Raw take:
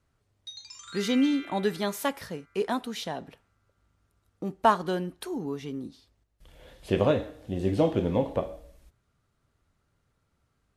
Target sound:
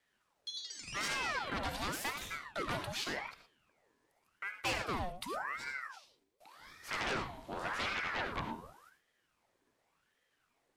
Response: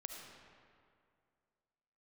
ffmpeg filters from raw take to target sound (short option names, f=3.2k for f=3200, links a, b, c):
-filter_complex "[0:a]asettb=1/sr,asplit=3[a][b][c];[a]atrim=end=4.734[d];[b]atrim=start=4.73:end=6.93,asetpts=PTS-STARTPTS,afade=t=in:d=0.004:c=qsin,afade=t=out:st=2.196:d=0.004:c=qsin,asuperstop=centerf=970:order=20:qfactor=1.4[e];[c]atrim=start=6.926[f];[d][e]acrossfade=d=0.004:c1=hsin:c2=qsin[g];[g][f]acrossfade=d=0.004:c1=qsin:c2=hsin,asplit=2[h][i];[i]aeval=exprs='0.398*sin(PI/2*7.94*val(0)/0.398)':c=same,volume=-8.5dB[j];[h][j]amix=inputs=2:normalize=0,lowshelf=f=420:g=-8,acrossover=split=6800[k][l];[l]asoftclip=type=tanh:threshold=-30dB[m];[k][m]amix=inputs=2:normalize=0[n];[1:a]atrim=start_sample=2205,afade=t=out:st=0.17:d=0.01,atrim=end_sample=7938[o];[n][o]afir=irnorm=-1:irlink=0,aeval=exprs='val(0)*sin(2*PI*1100*n/s+1100*0.7/0.88*sin(2*PI*0.88*n/s))':c=same,volume=-8dB"